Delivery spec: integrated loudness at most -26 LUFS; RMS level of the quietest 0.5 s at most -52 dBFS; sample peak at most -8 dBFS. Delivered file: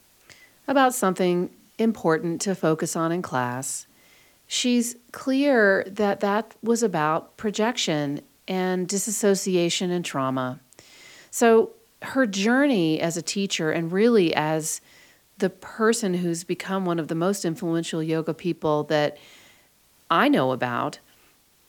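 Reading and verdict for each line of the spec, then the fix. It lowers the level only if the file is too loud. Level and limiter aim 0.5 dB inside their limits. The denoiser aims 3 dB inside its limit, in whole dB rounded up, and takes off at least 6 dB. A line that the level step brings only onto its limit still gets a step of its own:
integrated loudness -23.5 LUFS: fail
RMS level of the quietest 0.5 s -60 dBFS: OK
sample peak -5.0 dBFS: fail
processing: gain -3 dB; limiter -8.5 dBFS

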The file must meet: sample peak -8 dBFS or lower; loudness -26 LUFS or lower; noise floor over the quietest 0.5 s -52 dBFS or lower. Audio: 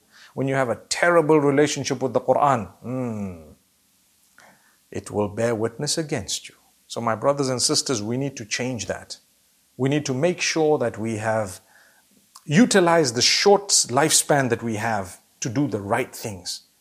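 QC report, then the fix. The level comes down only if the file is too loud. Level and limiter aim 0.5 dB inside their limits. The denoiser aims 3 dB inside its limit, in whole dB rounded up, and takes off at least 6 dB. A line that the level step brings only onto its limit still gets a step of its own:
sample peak -4.5 dBFS: fail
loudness -21.5 LUFS: fail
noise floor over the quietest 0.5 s -63 dBFS: OK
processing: gain -5 dB

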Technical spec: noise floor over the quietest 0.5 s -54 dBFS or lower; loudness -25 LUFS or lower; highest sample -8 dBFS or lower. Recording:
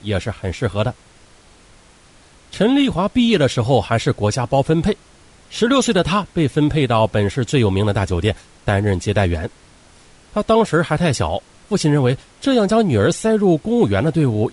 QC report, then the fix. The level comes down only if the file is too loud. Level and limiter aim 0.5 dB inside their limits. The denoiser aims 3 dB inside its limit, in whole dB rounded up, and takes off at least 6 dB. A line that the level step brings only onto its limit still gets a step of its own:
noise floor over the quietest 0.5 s -48 dBFS: fail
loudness -18.0 LUFS: fail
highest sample -4.0 dBFS: fail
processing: gain -7.5 dB

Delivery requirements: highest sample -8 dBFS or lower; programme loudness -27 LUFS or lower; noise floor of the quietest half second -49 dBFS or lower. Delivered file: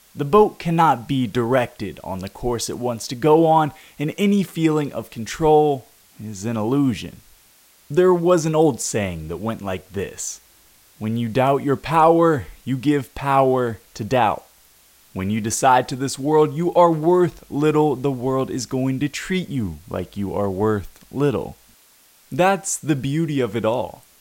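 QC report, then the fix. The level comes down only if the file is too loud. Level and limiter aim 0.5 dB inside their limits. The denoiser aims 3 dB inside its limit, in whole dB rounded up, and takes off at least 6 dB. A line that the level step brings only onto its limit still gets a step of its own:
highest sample -3.5 dBFS: fail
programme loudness -20.0 LUFS: fail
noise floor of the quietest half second -54 dBFS: OK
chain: gain -7.5 dB

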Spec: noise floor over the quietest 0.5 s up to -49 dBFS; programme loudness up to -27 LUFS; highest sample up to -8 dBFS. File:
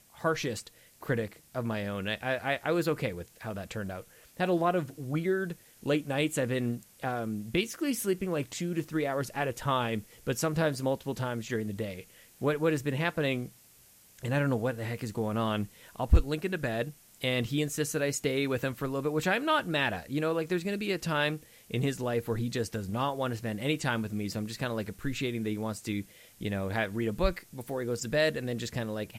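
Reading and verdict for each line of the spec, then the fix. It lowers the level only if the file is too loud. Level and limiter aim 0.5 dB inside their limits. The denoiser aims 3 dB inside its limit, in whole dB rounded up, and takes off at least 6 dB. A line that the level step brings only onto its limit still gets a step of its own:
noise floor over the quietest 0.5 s -59 dBFS: OK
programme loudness -31.5 LUFS: OK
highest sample -12.5 dBFS: OK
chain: none

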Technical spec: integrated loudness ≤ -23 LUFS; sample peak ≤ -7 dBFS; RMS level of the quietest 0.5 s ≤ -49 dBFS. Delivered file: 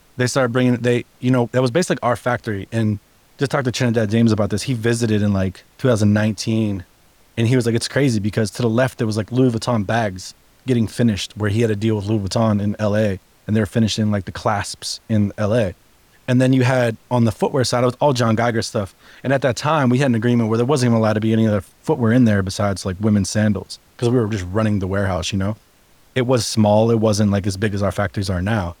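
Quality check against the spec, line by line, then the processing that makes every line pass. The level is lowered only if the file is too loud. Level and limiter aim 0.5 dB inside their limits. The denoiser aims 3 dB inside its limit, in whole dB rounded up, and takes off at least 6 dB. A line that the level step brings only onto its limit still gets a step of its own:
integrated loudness -19.0 LUFS: fail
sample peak -4.5 dBFS: fail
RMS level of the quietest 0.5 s -53 dBFS: OK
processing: gain -4.5 dB

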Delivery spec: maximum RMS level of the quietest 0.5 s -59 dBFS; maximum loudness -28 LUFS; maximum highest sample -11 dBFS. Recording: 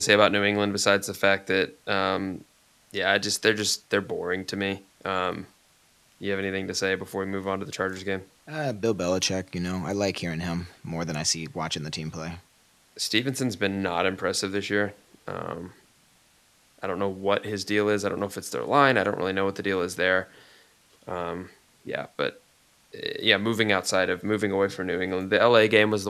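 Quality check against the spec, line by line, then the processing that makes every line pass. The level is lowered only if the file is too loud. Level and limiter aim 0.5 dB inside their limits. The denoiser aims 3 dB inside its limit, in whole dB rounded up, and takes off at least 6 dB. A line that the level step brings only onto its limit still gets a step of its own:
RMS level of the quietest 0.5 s -61 dBFS: OK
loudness -26.0 LUFS: fail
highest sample -2.0 dBFS: fail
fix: gain -2.5 dB; limiter -11.5 dBFS

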